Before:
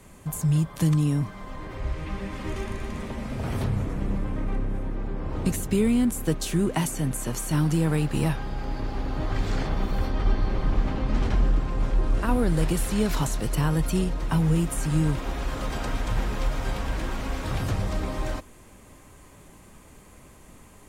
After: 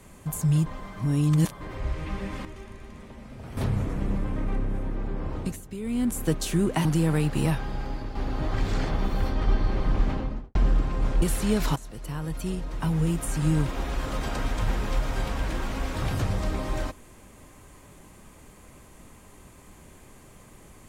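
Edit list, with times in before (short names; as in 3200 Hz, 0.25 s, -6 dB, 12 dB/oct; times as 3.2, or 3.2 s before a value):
0.66–1.61 reverse
2.45–3.57 gain -11 dB
5.25–6.17 dip -13.5 dB, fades 0.36 s
6.85–7.63 cut
8.56–8.93 fade out, to -6.5 dB
10.86–11.33 studio fade out
12–12.71 cut
13.25–15.08 fade in, from -16 dB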